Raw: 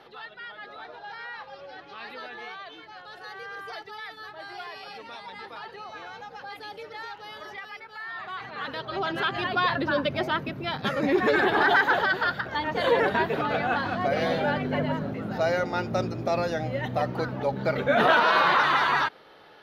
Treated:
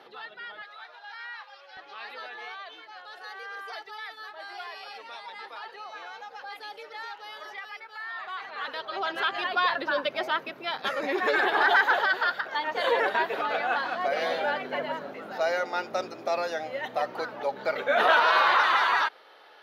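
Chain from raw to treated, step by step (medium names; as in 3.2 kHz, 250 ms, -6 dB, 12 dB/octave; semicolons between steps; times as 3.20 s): high-pass 220 Hz 12 dB/octave, from 0.62 s 1.1 kHz, from 1.77 s 520 Hz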